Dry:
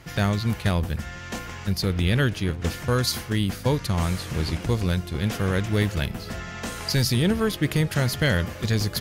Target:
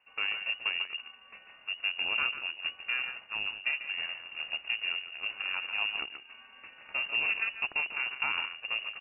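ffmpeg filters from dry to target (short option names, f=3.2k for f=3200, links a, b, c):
-af "aecho=1:1:144:0.501,aeval=exprs='0.376*(cos(1*acos(clip(val(0)/0.376,-1,1)))-cos(1*PI/2))+0.0266*(cos(3*acos(clip(val(0)/0.376,-1,1)))-cos(3*PI/2))+0.0299*(cos(7*acos(clip(val(0)/0.376,-1,1)))-cos(7*PI/2))':c=same,lowpass=f=2.5k:t=q:w=0.5098,lowpass=f=2.5k:t=q:w=0.6013,lowpass=f=2.5k:t=q:w=0.9,lowpass=f=2.5k:t=q:w=2.563,afreqshift=-2900,volume=-8.5dB"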